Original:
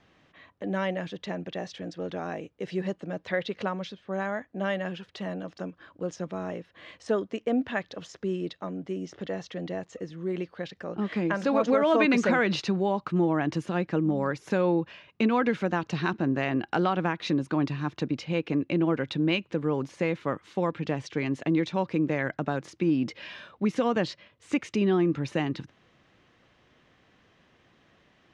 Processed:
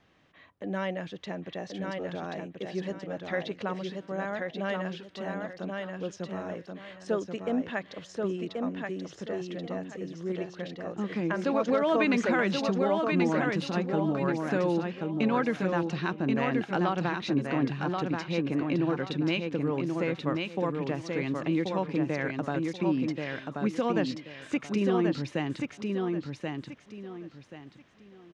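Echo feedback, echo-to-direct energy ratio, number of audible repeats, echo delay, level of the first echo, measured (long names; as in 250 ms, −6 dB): 27%, −3.5 dB, 3, 1,082 ms, −4.0 dB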